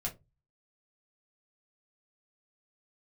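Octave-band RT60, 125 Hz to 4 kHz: 0.50, 0.30, 0.25, 0.20, 0.15, 0.15 seconds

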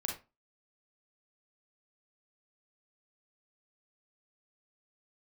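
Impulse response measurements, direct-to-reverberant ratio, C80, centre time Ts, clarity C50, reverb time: 0.0 dB, 13.5 dB, 27 ms, 5.0 dB, 0.25 s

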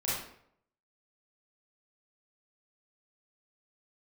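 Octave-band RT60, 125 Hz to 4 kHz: 0.70, 0.65, 0.70, 0.65, 0.60, 0.45 seconds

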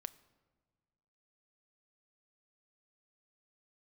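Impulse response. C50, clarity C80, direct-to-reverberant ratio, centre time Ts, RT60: 19.0 dB, 20.5 dB, 13.5 dB, 3 ms, 1.6 s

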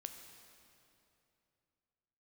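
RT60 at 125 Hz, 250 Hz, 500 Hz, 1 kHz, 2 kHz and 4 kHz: 3.3, 3.0, 3.0, 2.7, 2.5, 2.3 seconds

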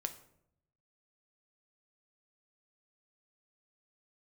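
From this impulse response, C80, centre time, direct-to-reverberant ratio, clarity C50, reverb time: 16.0 dB, 8 ms, 7.0 dB, 13.0 dB, 0.70 s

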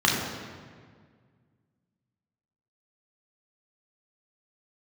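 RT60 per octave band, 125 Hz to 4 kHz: 2.6, 2.2, 1.9, 1.7, 1.6, 1.2 seconds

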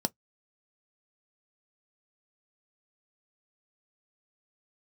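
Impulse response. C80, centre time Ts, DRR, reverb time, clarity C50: 59.0 dB, 3 ms, 9.5 dB, non-exponential decay, 38.0 dB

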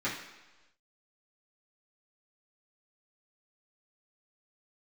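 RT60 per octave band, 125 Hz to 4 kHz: 1.0, 1.0, 1.1, 1.1, 1.1, 1.2 seconds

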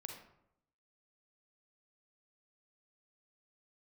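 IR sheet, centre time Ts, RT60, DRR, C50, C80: 33 ms, 0.80 s, 2.0 dB, 4.0 dB, 7.5 dB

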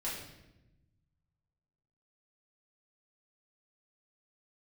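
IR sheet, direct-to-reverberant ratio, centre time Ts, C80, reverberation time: −7.5 dB, 53 ms, 5.5 dB, 0.95 s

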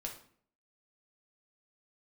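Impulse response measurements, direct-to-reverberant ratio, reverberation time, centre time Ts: 0.0 dB, 0.55 s, 19 ms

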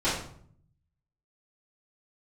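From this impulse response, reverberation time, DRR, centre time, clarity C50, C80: 0.60 s, −14.0 dB, 45 ms, 3.0 dB, 7.0 dB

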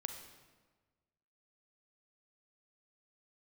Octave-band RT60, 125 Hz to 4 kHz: 1.6, 1.5, 1.4, 1.3, 1.2, 1.0 seconds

